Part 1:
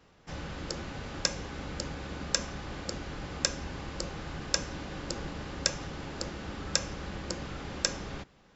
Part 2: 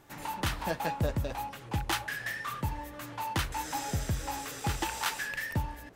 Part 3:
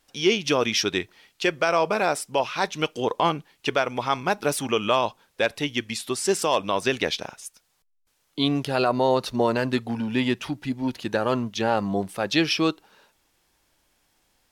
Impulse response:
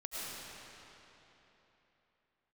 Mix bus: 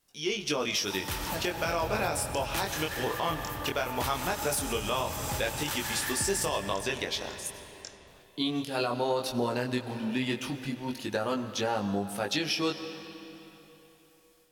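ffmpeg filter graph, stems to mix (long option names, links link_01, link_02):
-filter_complex "[0:a]volume=-17dB[link_01];[1:a]adelay=650,volume=3dB,asplit=2[link_02][link_03];[link_03]volume=-8.5dB[link_04];[2:a]dynaudnorm=framelen=320:gausssize=3:maxgain=8dB,flanger=delay=19.5:depth=6:speed=0.17,volume=-10dB,asplit=3[link_05][link_06][link_07];[link_06]volume=-12.5dB[link_08];[link_07]apad=whole_len=291137[link_09];[link_02][link_09]sidechaincompress=threshold=-43dB:ratio=8:attack=16:release=212[link_10];[link_01][link_10]amix=inputs=2:normalize=0,flanger=delay=22.5:depth=4.4:speed=2.8,acompressor=threshold=-38dB:ratio=6,volume=0dB[link_11];[3:a]atrim=start_sample=2205[link_12];[link_04][link_08]amix=inputs=2:normalize=0[link_13];[link_13][link_12]afir=irnorm=-1:irlink=0[link_14];[link_05][link_11][link_14]amix=inputs=3:normalize=0,crystalizer=i=1.5:c=0,alimiter=limit=-18.5dB:level=0:latency=1:release=164"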